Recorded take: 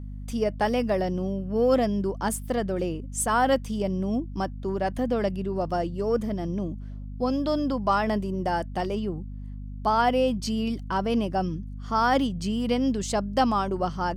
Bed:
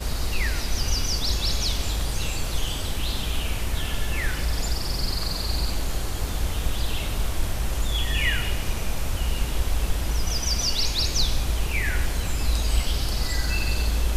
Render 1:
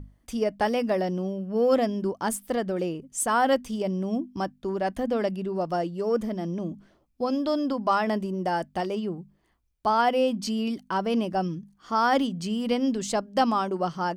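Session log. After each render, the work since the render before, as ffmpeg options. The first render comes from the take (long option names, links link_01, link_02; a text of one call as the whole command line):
ffmpeg -i in.wav -af "bandreject=frequency=50:width_type=h:width=6,bandreject=frequency=100:width_type=h:width=6,bandreject=frequency=150:width_type=h:width=6,bandreject=frequency=200:width_type=h:width=6,bandreject=frequency=250:width_type=h:width=6" out.wav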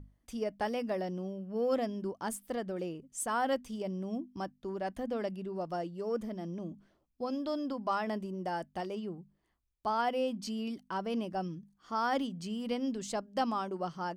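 ffmpeg -i in.wav -af "volume=-9dB" out.wav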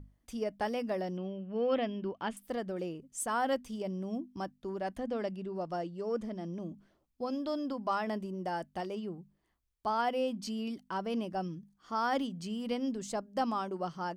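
ffmpeg -i in.wav -filter_complex "[0:a]asettb=1/sr,asplit=3[link_01][link_02][link_03];[link_01]atrim=end=1.174[link_04];[link_02]atrim=start=1.17:end=2.37,asetpts=PTS-STARTPTS,afade=type=in:duration=0.004:curve=qsin,afade=type=out:start_time=1.196:duration=0.004:curve=qsin,lowpass=frequency=2900:width_type=q:width=2.7[link_05];[link_03]atrim=start=2.366[link_06];[link_04][link_05]acrossfade=duration=0.004:curve1=hsin:curve2=qsin[link_07];[link_07][link_06]acrossfade=duration=0.004:curve1=qsin:curve2=hsin,asettb=1/sr,asplit=3[link_08][link_09][link_10];[link_08]atrim=end=4.984[link_11];[link_09]atrim=start=4.98:end=6.54,asetpts=PTS-STARTPTS,afade=type=in:duration=0.004:curve=qsin,afade=type=out:start_time=1.556:duration=0.004:curve=qsin,lowpass=8500[link_12];[link_10]atrim=start=6.536[link_13];[link_11][link_12]acrossfade=duration=0.004:curve1=hsin:curve2=qsin[link_14];[link_14][link_13]acrossfade=duration=0.004:curve1=qsin:curve2=hsin,asettb=1/sr,asplit=3[link_15][link_16][link_17];[link_15]atrim=end=12.894[link_18];[link_16]atrim=start=12.89:end=13.44,asetpts=PTS-STARTPTS,afade=type=in:duration=0.004:curve=qsin,afade=type=out:start_time=0.546:duration=0.004:curve=qsin,equalizer=frequency=3200:width_type=o:width=1.5:gain=-4.5[link_19];[link_17]atrim=start=13.436[link_20];[link_18][link_19]acrossfade=duration=0.004:curve1=hsin:curve2=qsin[link_21];[link_21][link_20]acrossfade=duration=0.004:curve1=qsin:curve2=hsin" out.wav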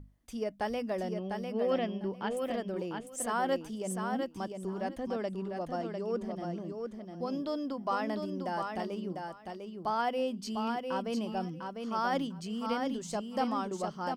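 ffmpeg -i in.wav -af "aecho=1:1:700|1400|2100:0.562|0.09|0.0144" out.wav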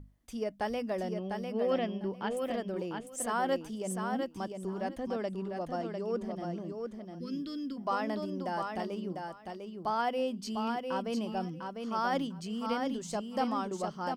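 ffmpeg -i in.wav -filter_complex "[0:a]asplit=3[link_01][link_02][link_03];[link_01]afade=type=out:start_time=7.18:duration=0.02[link_04];[link_02]asuperstop=centerf=770:order=4:qfactor=0.62,afade=type=in:start_time=7.18:duration=0.02,afade=type=out:start_time=7.76:duration=0.02[link_05];[link_03]afade=type=in:start_time=7.76:duration=0.02[link_06];[link_04][link_05][link_06]amix=inputs=3:normalize=0" out.wav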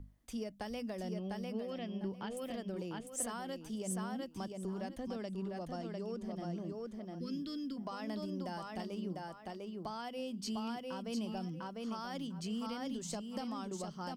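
ffmpeg -i in.wav -filter_complex "[0:a]alimiter=level_in=0.5dB:limit=-24dB:level=0:latency=1:release=200,volume=-0.5dB,acrossover=split=220|3000[link_01][link_02][link_03];[link_02]acompressor=threshold=-43dB:ratio=4[link_04];[link_01][link_04][link_03]amix=inputs=3:normalize=0" out.wav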